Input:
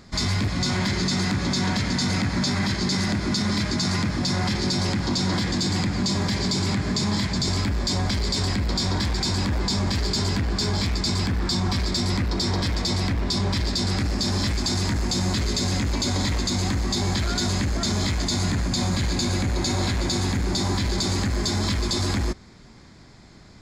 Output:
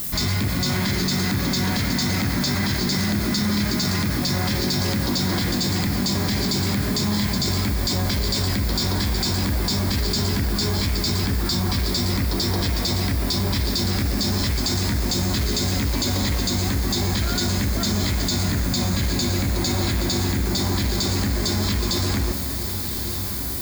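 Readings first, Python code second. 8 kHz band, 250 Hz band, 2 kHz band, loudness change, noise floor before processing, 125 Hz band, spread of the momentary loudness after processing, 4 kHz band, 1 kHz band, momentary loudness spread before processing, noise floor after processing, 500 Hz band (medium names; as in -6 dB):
+2.5 dB, +1.5 dB, +1.5 dB, +2.0 dB, -47 dBFS, +1.5 dB, 1 LU, +1.5 dB, +0.5 dB, 1 LU, -26 dBFS, +1.5 dB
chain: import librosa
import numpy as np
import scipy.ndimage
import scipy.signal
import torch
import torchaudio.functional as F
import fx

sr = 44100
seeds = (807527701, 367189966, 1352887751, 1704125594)

p1 = fx.peak_eq(x, sr, hz=910.0, db=-2.0, octaves=0.77)
p2 = fx.comb_fb(p1, sr, f0_hz=69.0, decay_s=1.9, harmonics='all', damping=0.0, mix_pct=60)
p3 = fx.dmg_noise_colour(p2, sr, seeds[0], colour='violet', level_db=-44.0)
p4 = p3 + fx.echo_diffused(p3, sr, ms=1185, feedback_pct=48, wet_db=-13, dry=0)
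p5 = fx.env_flatten(p4, sr, amount_pct=50)
y = p5 * librosa.db_to_amplitude(7.0)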